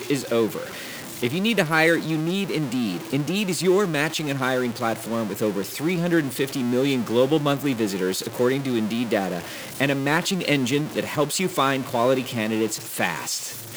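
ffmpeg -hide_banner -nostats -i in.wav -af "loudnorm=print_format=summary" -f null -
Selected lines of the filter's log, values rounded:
Input Integrated:    -23.5 LUFS
Input True Peak:      -4.0 dBTP
Input LRA:             1.2 LU
Input Threshold:     -33.5 LUFS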